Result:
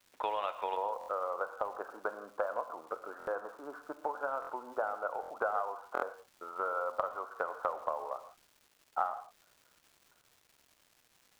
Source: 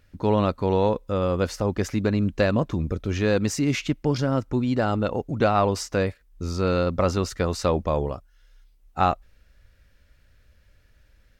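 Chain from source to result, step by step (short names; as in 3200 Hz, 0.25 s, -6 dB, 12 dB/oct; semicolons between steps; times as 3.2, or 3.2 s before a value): steep low-pass 3600 Hz 96 dB/oct, from 0.75 s 1500 Hz; gate with hold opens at -46 dBFS; HPF 680 Hz 24 dB/oct; transient shaper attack +7 dB, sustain +3 dB; compressor 4:1, threshold -32 dBFS, peak gain reduction 17 dB; crackle 490/s -52 dBFS; non-linear reverb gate 0.19 s flat, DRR 10 dB; stuck buffer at 0.99/3.18/4.4/5.21/5.93, samples 1024, times 3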